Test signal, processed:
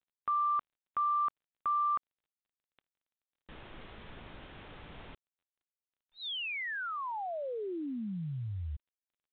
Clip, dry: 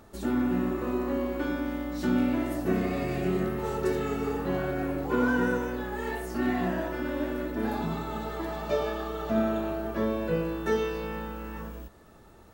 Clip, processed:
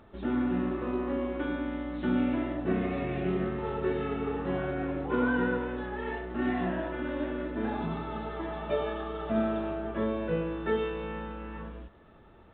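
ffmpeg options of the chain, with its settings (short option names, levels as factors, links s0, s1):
-af "volume=0.794" -ar 8000 -c:a pcm_mulaw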